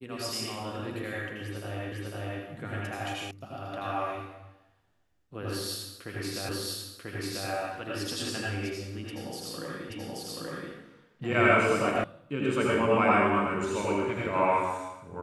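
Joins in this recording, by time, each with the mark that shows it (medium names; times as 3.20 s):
1.92 s: repeat of the last 0.5 s
3.31 s: sound stops dead
6.49 s: repeat of the last 0.99 s
9.90 s: repeat of the last 0.83 s
12.04 s: sound stops dead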